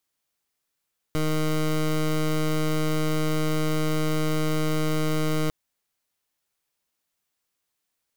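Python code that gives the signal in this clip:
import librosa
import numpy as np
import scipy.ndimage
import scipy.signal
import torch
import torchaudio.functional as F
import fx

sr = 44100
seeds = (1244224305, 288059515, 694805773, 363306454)

y = fx.pulse(sr, length_s=4.35, hz=155.0, level_db=-23.5, duty_pct=18)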